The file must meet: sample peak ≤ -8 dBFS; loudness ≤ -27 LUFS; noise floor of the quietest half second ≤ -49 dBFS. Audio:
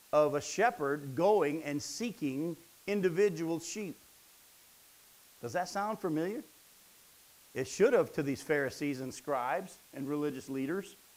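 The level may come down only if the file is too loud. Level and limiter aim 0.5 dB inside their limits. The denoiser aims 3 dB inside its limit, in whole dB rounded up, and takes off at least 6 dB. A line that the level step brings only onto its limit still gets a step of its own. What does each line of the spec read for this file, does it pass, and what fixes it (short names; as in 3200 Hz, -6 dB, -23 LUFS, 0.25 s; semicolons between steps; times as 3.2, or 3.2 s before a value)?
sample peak -14.0 dBFS: OK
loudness -33.5 LUFS: OK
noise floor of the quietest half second -61 dBFS: OK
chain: none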